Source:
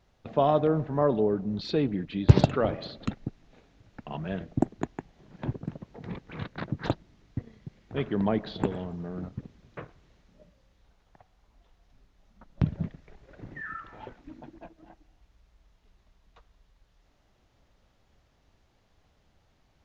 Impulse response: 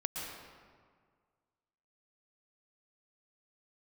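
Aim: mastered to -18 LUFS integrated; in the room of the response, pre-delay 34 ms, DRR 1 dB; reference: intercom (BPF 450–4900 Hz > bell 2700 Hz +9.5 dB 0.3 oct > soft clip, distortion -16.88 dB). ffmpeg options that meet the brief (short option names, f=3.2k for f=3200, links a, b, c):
-filter_complex "[0:a]asplit=2[a][b];[1:a]atrim=start_sample=2205,adelay=34[c];[b][c]afir=irnorm=-1:irlink=0,volume=-3.5dB[d];[a][d]amix=inputs=2:normalize=0,highpass=450,lowpass=4.9k,equalizer=f=2.7k:t=o:w=0.3:g=9.5,asoftclip=threshold=-16.5dB,volume=15dB"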